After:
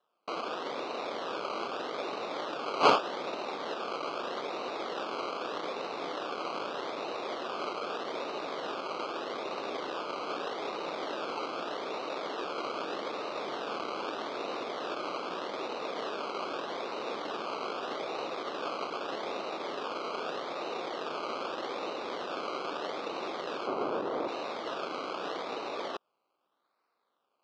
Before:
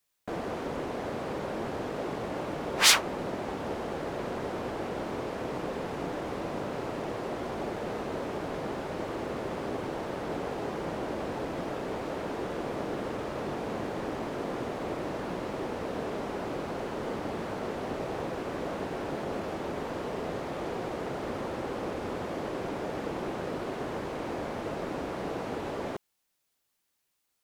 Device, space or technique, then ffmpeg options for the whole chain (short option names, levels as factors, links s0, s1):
circuit-bent sampling toy: -filter_complex "[0:a]acrusher=samples=19:mix=1:aa=0.000001:lfo=1:lforange=11.4:lforate=0.81,highpass=420,equalizer=f=1200:t=q:w=4:g=7,equalizer=f=1800:t=q:w=4:g=-7,equalizer=f=4000:t=q:w=4:g=3,lowpass=f=4800:w=0.5412,lowpass=f=4800:w=1.3066,asettb=1/sr,asplit=3[s0][s1][s2];[s0]atrim=end=23.674[s3];[s1]atrim=start=23.67:end=24.28,asetpts=PTS-STARTPTS,afade=t=in:d=0.004:c=qsin,afade=t=out:st=0.606:d=0.004:c=qsin,tiltshelf=f=1400:g=8[s4];[s2]atrim=start=24.276[s5];[s3][s4]acrossfade=d=0.004:c1=hsin:c2=qsin[s6];[s6][s5]acrossfade=d=0.004:c1=qsin:c2=hsin"